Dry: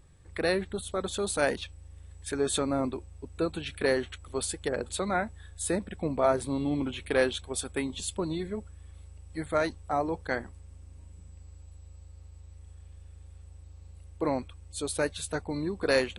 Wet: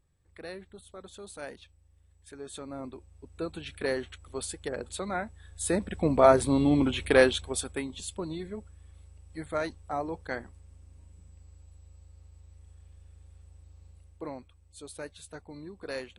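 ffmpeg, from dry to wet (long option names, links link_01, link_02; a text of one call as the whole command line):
ffmpeg -i in.wav -af "volume=6dB,afade=type=in:start_time=2.51:duration=1.18:silence=0.298538,afade=type=in:start_time=5.41:duration=0.77:silence=0.316228,afade=type=out:start_time=7.09:duration=0.77:silence=0.316228,afade=type=out:start_time=13.86:duration=0.49:silence=0.398107" out.wav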